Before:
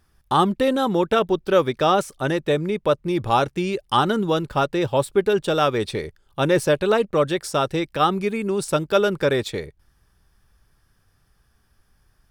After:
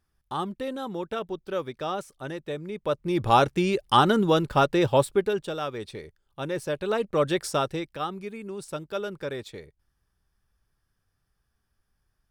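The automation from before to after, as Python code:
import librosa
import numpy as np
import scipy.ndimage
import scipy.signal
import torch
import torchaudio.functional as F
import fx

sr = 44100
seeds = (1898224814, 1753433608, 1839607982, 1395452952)

y = fx.gain(x, sr, db=fx.line((2.63, -12.5), (3.29, 0.0), (4.97, 0.0), (5.58, -12.0), (6.61, -12.0), (7.42, -1.0), (8.08, -13.0)))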